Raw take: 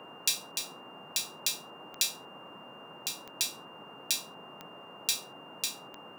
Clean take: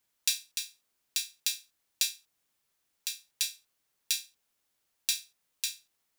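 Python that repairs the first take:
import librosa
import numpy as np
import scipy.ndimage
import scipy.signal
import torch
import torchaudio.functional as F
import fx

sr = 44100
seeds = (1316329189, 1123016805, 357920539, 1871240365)

y = fx.fix_declick_ar(x, sr, threshold=10.0)
y = fx.notch(y, sr, hz=2800.0, q=30.0)
y = fx.noise_reduce(y, sr, print_start_s=3.6, print_end_s=4.1, reduce_db=29.0)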